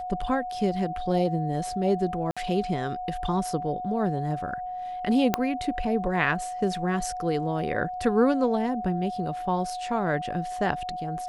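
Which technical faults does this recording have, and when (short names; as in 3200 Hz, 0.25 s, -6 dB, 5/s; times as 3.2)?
tone 730 Hz -31 dBFS
2.31–2.37 gap 56 ms
5.34 pop -7 dBFS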